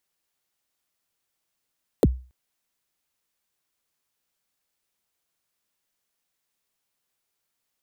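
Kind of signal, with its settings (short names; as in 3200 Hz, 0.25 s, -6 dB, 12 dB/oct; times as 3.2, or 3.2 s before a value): kick drum length 0.28 s, from 580 Hz, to 63 Hz, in 36 ms, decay 0.35 s, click on, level -10 dB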